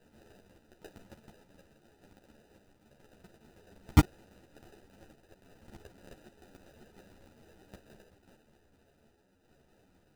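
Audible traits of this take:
sample-and-hold tremolo
phaser sweep stages 8, 0.67 Hz, lowest notch 550–2,800 Hz
aliases and images of a low sample rate 1,100 Hz, jitter 0%
a shimmering, thickened sound

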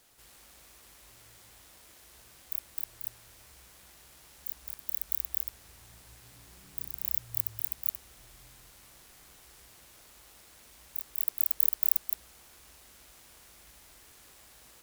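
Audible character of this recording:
background noise floor −57 dBFS
spectral slope 0.0 dB per octave

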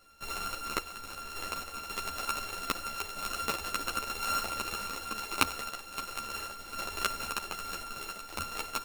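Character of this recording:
a buzz of ramps at a fixed pitch in blocks of 32 samples
sample-and-hold tremolo 3.7 Hz
a shimmering, thickened sound

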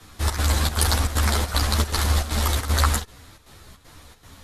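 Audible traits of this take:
chopped level 2.6 Hz, depth 65%, duty 75%
a shimmering, thickened sound

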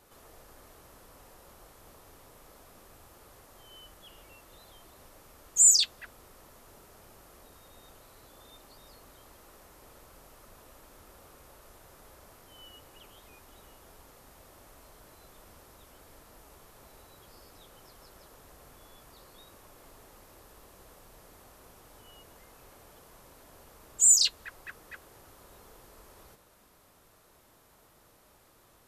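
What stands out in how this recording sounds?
background noise floor −62 dBFS
spectral slope 0.0 dB per octave

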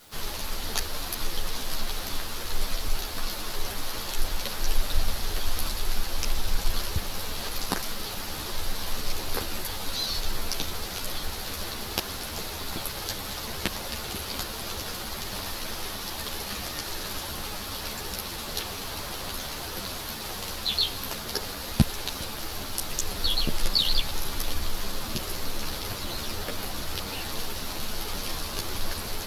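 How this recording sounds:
a quantiser's noise floor 10 bits, dither triangular
a shimmering, thickened sound

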